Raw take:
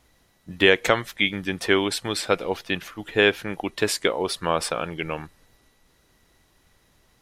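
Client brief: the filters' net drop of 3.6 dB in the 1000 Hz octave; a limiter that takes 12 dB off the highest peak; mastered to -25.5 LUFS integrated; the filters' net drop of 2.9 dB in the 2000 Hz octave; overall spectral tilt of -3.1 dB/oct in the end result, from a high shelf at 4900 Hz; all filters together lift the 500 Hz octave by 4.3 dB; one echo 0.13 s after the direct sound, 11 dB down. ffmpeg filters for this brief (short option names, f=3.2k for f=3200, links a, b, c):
-af "equalizer=f=500:t=o:g=6.5,equalizer=f=1k:t=o:g=-6.5,equalizer=f=2k:t=o:g=-3.5,highshelf=f=4.9k:g=8,alimiter=limit=-13.5dB:level=0:latency=1,aecho=1:1:130:0.282,volume=0.5dB"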